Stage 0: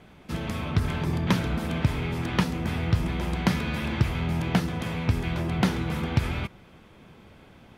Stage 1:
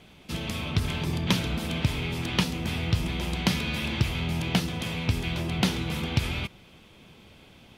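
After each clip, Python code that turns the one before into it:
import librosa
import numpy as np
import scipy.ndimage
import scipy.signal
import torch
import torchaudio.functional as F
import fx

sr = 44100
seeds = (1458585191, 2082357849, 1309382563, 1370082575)

y = fx.high_shelf_res(x, sr, hz=2200.0, db=6.5, q=1.5)
y = y * 10.0 ** (-2.0 / 20.0)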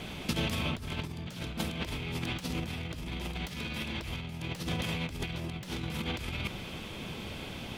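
y = 10.0 ** (-21.0 / 20.0) * (np.abs((x / 10.0 ** (-21.0 / 20.0) + 3.0) % 4.0 - 2.0) - 1.0)
y = fx.over_compress(y, sr, threshold_db=-36.0, ratio=-0.5)
y = y * 10.0 ** (3.0 / 20.0)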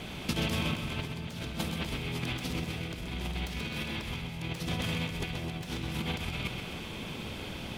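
y = fx.echo_feedback(x, sr, ms=128, feedback_pct=56, wet_db=-7)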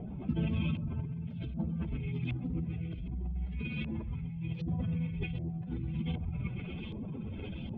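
y = fx.spec_expand(x, sr, power=2.2)
y = fx.filter_lfo_lowpass(y, sr, shape='saw_up', hz=1.3, low_hz=740.0, high_hz=4000.0, q=1.2)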